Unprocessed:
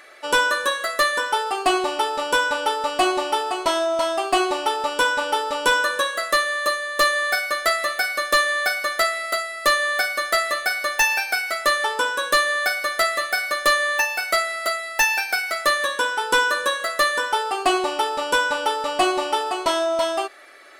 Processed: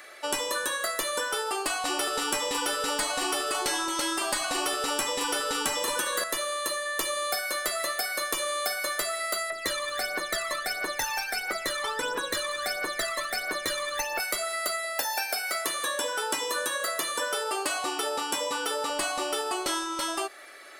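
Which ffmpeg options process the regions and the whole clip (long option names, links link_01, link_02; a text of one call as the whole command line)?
ffmpeg -i in.wav -filter_complex "[0:a]asettb=1/sr,asplit=3[link_01][link_02][link_03];[link_01]atrim=end=1.854[link_04];[link_02]atrim=start=1.85:end=6.24,asetpts=PTS-STARTPTS,afade=type=in:duration=0.004:curve=qsin,afade=type=out:start_time=4.386:duration=0.004:curve=qsin,acontrast=35,aecho=1:1:221:0.237,atrim=end_sample=193599[link_05];[link_03]atrim=start=6.236[link_06];[link_04][link_05]acrossfade=duration=0.004:curve1=hsin:curve2=qsin[link_07];[link_07][link_06]acrossfade=duration=0.004:curve1=qsin:curve2=hsin,asettb=1/sr,asplit=3[link_08][link_09][link_10];[link_08]atrim=end=9.504[link_11];[link_09]atrim=start=9.5:end=14.2,asetpts=PTS-STARTPTS,afade=type=in:duration=0.004:curve=qsin,afade=type=out:start_time=4.696:duration=0.004:curve=qsin,lowpass=frequency=2800:poles=1,aphaser=in_gain=1:out_gain=1:delay=1:decay=0.7:speed=1.5:type=triangular[link_12];[link_10]atrim=start=14.196[link_13];[link_11][link_12]acrossfade=duration=0.004:curve1=hsin:curve2=qsin[link_14];[link_14][link_13]acrossfade=duration=0.004:curve1=qsin:curve2=hsin,asettb=1/sr,asplit=3[link_15][link_16][link_17];[link_15]atrim=end=14.844[link_18];[link_16]atrim=start=14.84:end=18.9,asetpts=PTS-STARTPTS,afade=type=in:duration=0.004:curve=qsin,afade=type=out:start_time=4.056:duration=0.004:curve=qsin,highpass=140,equalizer=frequency=600:width=5.8:gain=9[link_19];[link_17]atrim=start=18.896[link_20];[link_18][link_19]acrossfade=duration=0.004:curve1=hsin:curve2=qsin[link_21];[link_21][link_20]acrossfade=duration=0.004:curve1=qsin:curve2=hsin,afftfilt=real='re*lt(hypot(re,im),0.447)':imag='im*lt(hypot(re,im),0.447)':win_size=1024:overlap=0.75,highshelf=frequency=5800:gain=7.5,acrossover=split=300|2100|4500[link_22][link_23][link_24][link_25];[link_22]acompressor=threshold=-42dB:ratio=4[link_26];[link_23]acompressor=threshold=-27dB:ratio=4[link_27];[link_24]acompressor=threshold=-41dB:ratio=4[link_28];[link_25]acompressor=threshold=-29dB:ratio=4[link_29];[link_26][link_27][link_28][link_29]amix=inputs=4:normalize=0,volume=-1.5dB" out.wav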